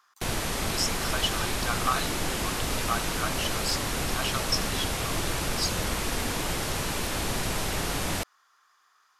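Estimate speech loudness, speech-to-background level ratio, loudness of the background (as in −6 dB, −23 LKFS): −32.5 LKFS, −3.5 dB, −29.0 LKFS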